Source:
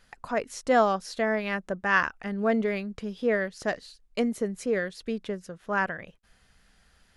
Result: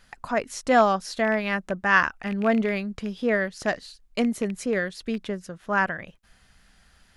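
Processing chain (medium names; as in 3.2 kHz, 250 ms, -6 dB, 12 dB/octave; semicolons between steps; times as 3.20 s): rattle on loud lows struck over -33 dBFS, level -30 dBFS; peaking EQ 460 Hz -4.5 dB 0.49 oct; trim +4 dB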